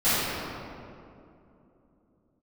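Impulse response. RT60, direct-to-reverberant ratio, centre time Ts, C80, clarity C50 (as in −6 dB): 2.8 s, −18.0 dB, 187 ms, −3.0 dB, −5.5 dB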